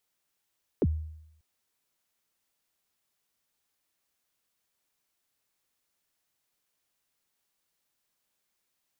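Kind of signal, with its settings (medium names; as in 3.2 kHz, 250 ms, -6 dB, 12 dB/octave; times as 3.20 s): kick drum length 0.59 s, from 510 Hz, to 78 Hz, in 43 ms, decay 0.79 s, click off, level -19 dB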